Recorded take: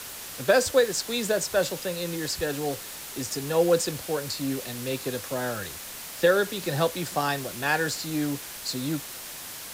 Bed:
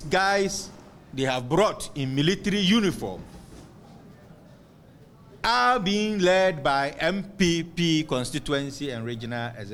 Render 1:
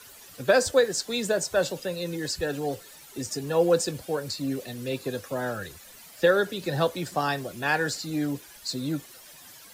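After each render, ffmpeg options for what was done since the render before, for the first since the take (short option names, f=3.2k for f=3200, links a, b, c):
-af "afftdn=nr=13:nf=-39"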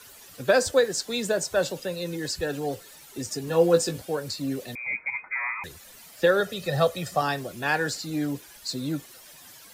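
-filter_complex "[0:a]asettb=1/sr,asplit=3[a][b][c];[a]atrim=end=3.464[d];[b]atrim=start=3.46:end=4.02,asetpts=PTS-STARTPTS,afade=t=in:d=0.004:c=qsin,afade=t=out:st=0.556:d=0.004:c=qsin,asplit=2[e][f];[f]adelay=18,volume=-5.5dB[g];[e][g]amix=inputs=2:normalize=0,atrim=end_sample=24696[h];[c]atrim=start=4.016[i];[d][h]acrossfade=d=0.004:c1=hsin:c2=qsin[j];[j][i]acrossfade=d=0.004:c1=qsin:c2=hsin,asettb=1/sr,asplit=3[k][l][m];[k]atrim=end=4.754[n];[l]atrim=start=4.75:end=5.64,asetpts=PTS-STARTPTS,afade=t=in:d=0.004:c=qsin,afade=t=out:st=0.886:d=0.004:c=qsin,lowpass=f=2.2k:t=q:w=0.5098,lowpass=f=2.2k:t=q:w=0.6013,lowpass=f=2.2k:t=q:w=0.9,lowpass=f=2.2k:t=q:w=2.563,afreqshift=-2600[o];[m]atrim=start=5.636[p];[n][o]acrossfade=d=0.004:c1=hsin:c2=qsin[q];[q][p]acrossfade=d=0.004:c1=qsin:c2=hsin,asettb=1/sr,asplit=3[r][s][t];[r]atrim=end=6.404[u];[s]atrim=start=6.4:end=7.22,asetpts=PTS-STARTPTS,afade=t=in:d=0.004:c=qsin,afade=t=out:st=0.816:d=0.004:c=qsin,aecho=1:1:1.6:0.65,atrim=end_sample=36162[v];[t]atrim=start=7.216[w];[u][v]acrossfade=d=0.004:c1=hsin:c2=qsin[x];[x][w]acrossfade=d=0.004:c1=qsin:c2=hsin"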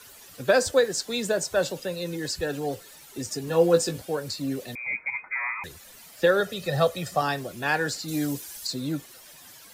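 -filter_complex "[0:a]asettb=1/sr,asplit=3[a][b][c];[a]atrim=end=8.084[d];[b]atrim=start=8.08:end=8.67,asetpts=PTS-STARTPTS,afade=t=in:d=0.004:c=qsin,afade=t=out:st=0.586:d=0.004:c=qsin,bass=f=250:g=1,treble=f=4k:g=10[e];[c]atrim=start=8.666[f];[d][e]acrossfade=d=0.004:c1=hsin:c2=qsin[g];[g][f]acrossfade=d=0.004:c1=qsin:c2=hsin"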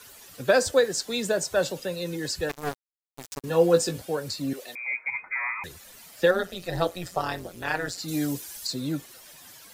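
-filter_complex "[0:a]asettb=1/sr,asplit=3[a][b][c];[a]atrim=end=2.494[d];[b]atrim=start=2.49:end=3.44,asetpts=PTS-STARTPTS,afade=t=in:d=0.004:c=qsin,afade=t=out:st=0.946:d=0.004:c=qsin,acrusher=bits=3:mix=0:aa=0.5[e];[c]atrim=start=3.436[f];[d][e]acrossfade=d=0.004:c1=hsin:c2=qsin[g];[g][f]acrossfade=d=0.004:c1=qsin:c2=hsin,asettb=1/sr,asplit=3[h][i][j];[h]atrim=end=4.534[k];[i]atrim=start=4.53:end=5.07,asetpts=PTS-STARTPTS,afade=t=in:d=0.004:c=qsin,afade=t=out:st=0.536:d=0.004:c=qsin,highpass=520[l];[j]atrim=start=5.066[m];[k][l]acrossfade=d=0.004:c1=hsin:c2=qsin[n];[n][m]acrossfade=d=0.004:c1=qsin:c2=hsin,asettb=1/sr,asplit=3[o][p][q];[o]atrim=end=6.314[r];[p]atrim=start=6.31:end=7.98,asetpts=PTS-STARTPTS,afade=t=in:d=0.004:c=qsin,afade=t=out:st=1.666:d=0.004:c=qsin,tremolo=f=180:d=0.857[s];[q]atrim=start=7.976[t];[r][s]acrossfade=d=0.004:c1=hsin:c2=qsin[u];[u][t]acrossfade=d=0.004:c1=qsin:c2=hsin"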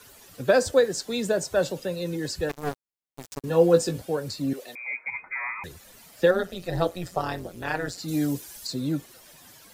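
-af "tiltshelf=f=780:g=3"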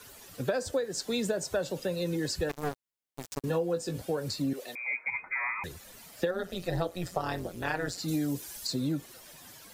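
-af "acompressor=threshold=-26dB:ratio=16"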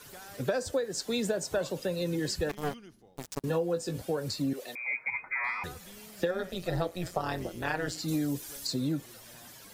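-filter_complex "[1:a]volume=-28dB[a];[0:a][a]amix=inputs=2:normalize=0"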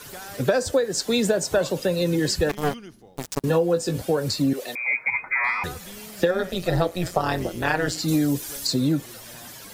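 -af "volume=9dB"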